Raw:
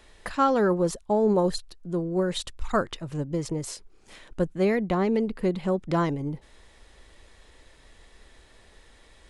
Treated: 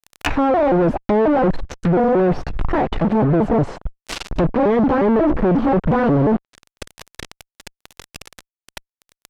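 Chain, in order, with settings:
pitch shifter gated in a rhythm +6.5 semitones, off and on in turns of 179 ms
fuzz pedal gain 51 dB, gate −44 dBFS
treble cut that deepens with the level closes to 1,000 Hz, closed at −14 dBFS

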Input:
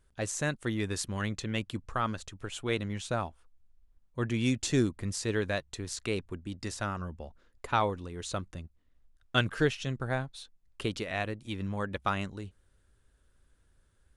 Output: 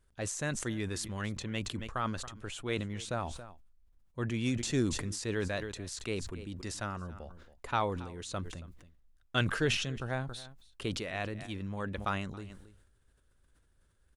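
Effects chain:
on a send: single-tap delay 277 ms −21.5 dB
on the sum: level that may fall only so fast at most 52 dB per second
level −4 dB

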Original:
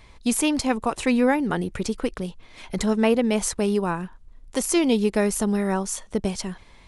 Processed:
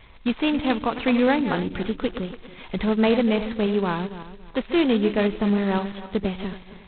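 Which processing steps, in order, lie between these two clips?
feedback delay that plays each chunk backwards 141 ms, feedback 51%, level −11 dB
G.726 16 kbit/s 8,000 Hz

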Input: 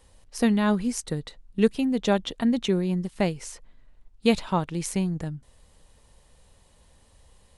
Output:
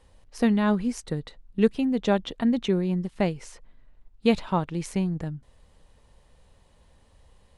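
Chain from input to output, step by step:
high-shelf EQ 5,500 Hz −11.5 dB

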